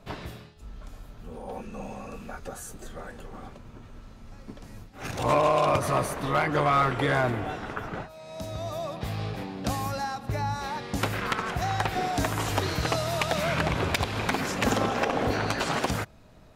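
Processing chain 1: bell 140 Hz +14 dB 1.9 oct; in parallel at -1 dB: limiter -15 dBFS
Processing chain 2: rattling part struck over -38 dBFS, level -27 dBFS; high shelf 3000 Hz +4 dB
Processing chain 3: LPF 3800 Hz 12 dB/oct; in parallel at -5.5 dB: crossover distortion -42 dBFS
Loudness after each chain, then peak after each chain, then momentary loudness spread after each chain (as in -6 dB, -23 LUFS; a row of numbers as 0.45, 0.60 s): -18.0, -27.0, -24.5 LUFS; -4.0, -11.5, -12.0 dBFS; 17, 20, 20 LU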